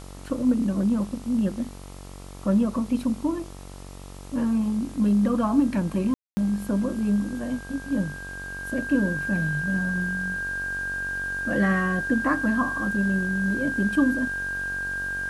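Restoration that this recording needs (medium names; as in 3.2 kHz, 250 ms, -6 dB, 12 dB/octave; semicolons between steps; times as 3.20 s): de-hum 46.8 Hz, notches 29; band-stop 1.6 kHz, Q 30; room tone fill 6.14–6.37 s; noise reduction 30 dB, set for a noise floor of -40 dBFS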